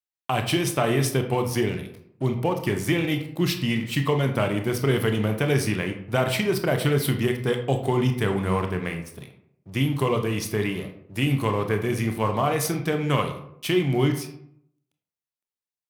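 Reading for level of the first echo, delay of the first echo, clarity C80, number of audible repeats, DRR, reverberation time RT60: none, none, 12.0 dB, none, 5.0 dB, 0.70 s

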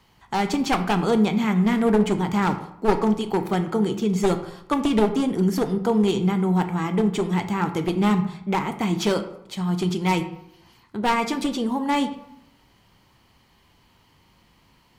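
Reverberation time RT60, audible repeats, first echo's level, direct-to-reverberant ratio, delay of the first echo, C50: 0.80 s, none, none, 7.5 dB, none, 11.5 dB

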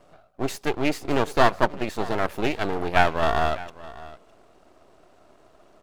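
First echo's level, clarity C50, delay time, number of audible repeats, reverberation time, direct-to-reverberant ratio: -18.5 dB, none, 0.609 s, 1, none, none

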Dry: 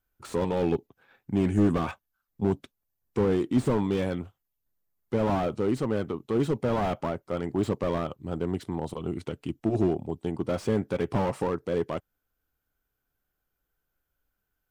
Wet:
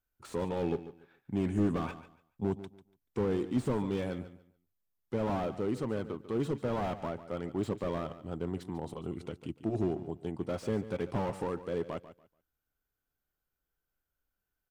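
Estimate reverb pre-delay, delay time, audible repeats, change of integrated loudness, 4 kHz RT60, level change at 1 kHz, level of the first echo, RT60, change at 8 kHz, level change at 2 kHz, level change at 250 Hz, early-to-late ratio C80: none, 0.144 s, 2, -6.5 dB, none, -6.5 dB, -14.0 dB, none, -6.5 dB, -6.5 dB, -6.5 dB, none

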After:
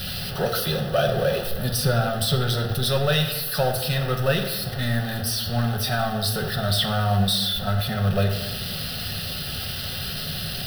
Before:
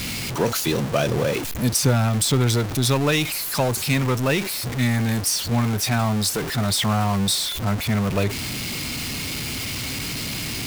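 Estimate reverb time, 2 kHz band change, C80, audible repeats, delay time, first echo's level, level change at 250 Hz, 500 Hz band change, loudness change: 1.2 s, -2.0 dB, 9.5 dB, none, none, none, -5.5 dB, 0.0 dB, -1.5 dB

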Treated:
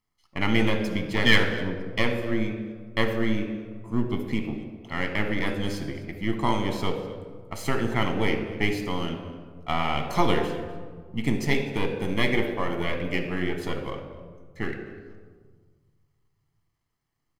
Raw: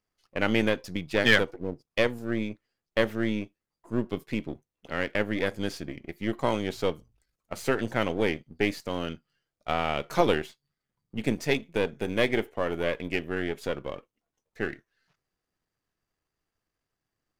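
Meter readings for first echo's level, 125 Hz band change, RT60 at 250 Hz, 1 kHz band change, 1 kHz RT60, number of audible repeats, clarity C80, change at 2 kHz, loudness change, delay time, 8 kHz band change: -20.5 dB, +6.0 dB, 2.1 s, +3.0 dB, 1.5 s, 1, 8.5 dB, +1.5 dB, +1.5 dB, 0.251 s, +1.5 dB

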